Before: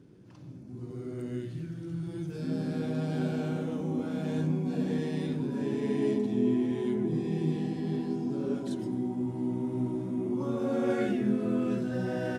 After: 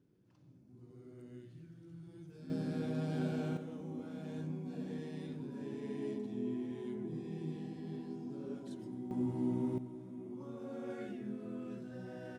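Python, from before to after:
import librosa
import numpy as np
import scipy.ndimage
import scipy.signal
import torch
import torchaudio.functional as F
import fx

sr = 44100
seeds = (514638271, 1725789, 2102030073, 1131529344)

y = fx.gain(x, sr, db=fx.steps((0.0, -16.0), (2.5, -5.5), (3.57, -12.0), (9.11, -3.0), (9.78, -15.0)))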